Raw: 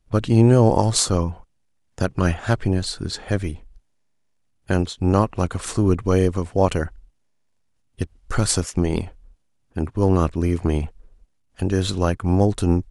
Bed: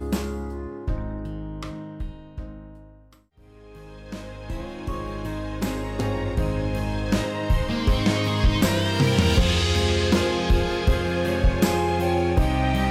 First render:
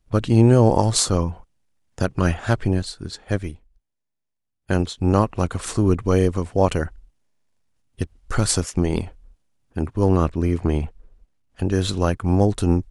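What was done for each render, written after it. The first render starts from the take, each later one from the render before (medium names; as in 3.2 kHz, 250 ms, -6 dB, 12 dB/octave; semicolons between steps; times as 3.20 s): 2.82–4.80 s: upward expansion, over -43 dBFS; 10.16–11.72 s: treble shelf 5 kHz -6 dB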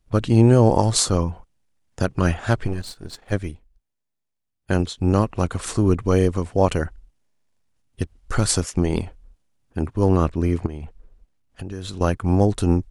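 2.66–3.32 s: partial rectifier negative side -12 dB; 4.79–5.31 s: dynamic bell 890 Hz, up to -4 dB, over -33 dBFS, Q 1; 10.66–12.01 s: compression 4:1, threshold -29 dBFS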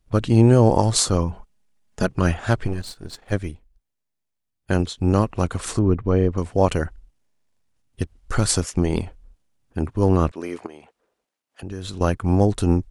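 1.31–2.07 s: comb 4.8 ms, depth 62%; 5.79–6.38 s: tape spacing loss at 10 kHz 29 dB; 10.31–11.63 s: high-pass 450 Hz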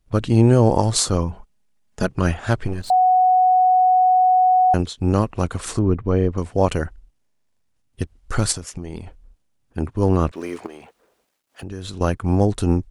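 2.90–4.74 s: bleep 739 Hz -11.5 dBFS; 8.52–9.78 s: compression 4:1, threshold -28 dBFS; 10.32–11.64 s: companding laws mixed up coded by mu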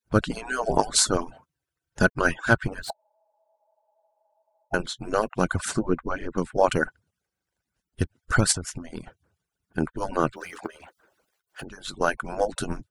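harmonic-percussive separation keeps percussive; peaking EQ 1.5 kHz +11 dB 0.22 oct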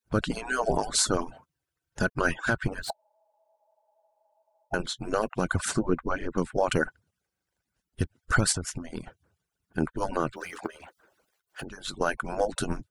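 peak limiter -13 dBFS, peak gain reduction 10 dB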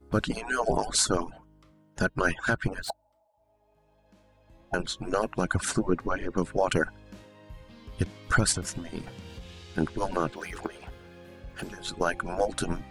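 add bed -25 dB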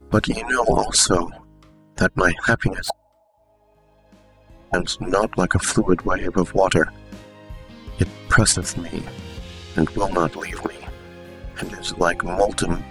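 trim +8.5 dB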